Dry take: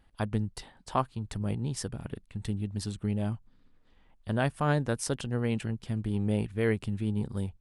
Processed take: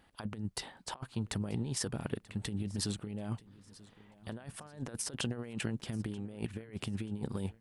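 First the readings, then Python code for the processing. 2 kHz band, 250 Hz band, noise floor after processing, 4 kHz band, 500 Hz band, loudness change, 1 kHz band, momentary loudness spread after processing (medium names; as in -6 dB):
-8.0 dB, -6.5 dB, -65 dBFS, +1.0 dB, -10.5 dB, -7.0 dB, -13.0 dB, 11 LU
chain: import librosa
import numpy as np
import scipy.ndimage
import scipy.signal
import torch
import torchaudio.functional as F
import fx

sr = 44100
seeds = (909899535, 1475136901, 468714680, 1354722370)

p1 = fx.highpass(x, sr, hz=200.0, slope=6)
p2 = fx.over_compress(p1, sr, threshold_db=-37.0, ratio=-0.5)
y = p2 + fx.echo_feedback(p2, sr, ms=935, feedback_pct=38, wet_db=-21.0, dry=0)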